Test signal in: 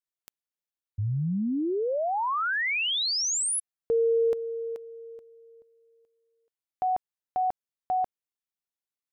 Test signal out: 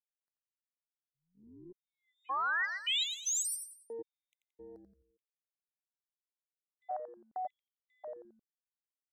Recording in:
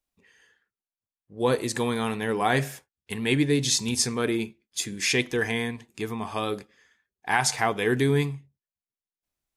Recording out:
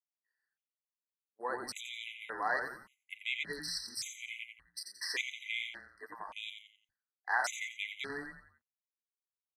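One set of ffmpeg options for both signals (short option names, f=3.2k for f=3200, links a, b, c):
-filter_complex "[0:a]highpass=1k,agate=range=-33dB:threshold=-55dB:ratio=3:release=233:detection=peak,afwtdn=0.0112,acrossover=split=8500[a][b];[b]acompressor=threshold=-37dB:ratio=4:attack=1:release=60[c];[a][c]amix=inputs=2:normalize=0,acrossover=split=2100[d][e];[e]alimiter=limit=-21.5dB:level=0:latency=1:release=38[f];[d][f]amix=inputs=2:normalize=0,asplit=5[g][h][i][j][k];[h]adelay=87,afreqshift=-130,volume=-6.5dB[l];[i]adelay=174,afreqshift=-260,volume=-14.9dB[m];[j]adelay=261,afreqshift=-390,volume=-23.3dB[n];[k]adelay=348,afreqshift=-520,volume=-31.7dB[o];[g][l][m][n][o]amix=inputs=5:normalize=0,afftfilt=real='re*gt(sin(2*PI*0.87*pts/sr)*(1-2*mod(floor(b*sr/1024/2000),2)),0)':imag='im*gt(sin(2*PI*0.87*pts/sr)*(1-2*mod(floor(b*sr/1024/2000),2)),0)':win_size=1024:overlap=0.75,volume=-4.5dB"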